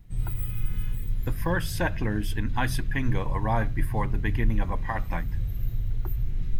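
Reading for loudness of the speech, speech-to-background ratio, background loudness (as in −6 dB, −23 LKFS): −31.0 LKFS, 2.0 dB, −33.0 LKFS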